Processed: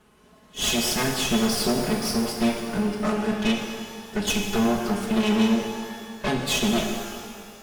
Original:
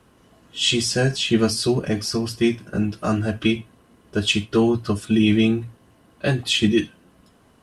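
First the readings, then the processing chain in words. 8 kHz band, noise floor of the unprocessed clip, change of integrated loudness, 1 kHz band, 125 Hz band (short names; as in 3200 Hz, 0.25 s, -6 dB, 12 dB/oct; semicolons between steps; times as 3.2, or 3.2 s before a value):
+1.0 dB, -57 dBFS, -3.0 dB, +4.0 dB, -8.0 dB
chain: minimum comb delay 4.7 ms; tube stage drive 21 dB, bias 0.55; shimmer reverb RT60 2 s, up +12 st, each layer -8 dB, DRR 2.5 dB; gain +1.5 dB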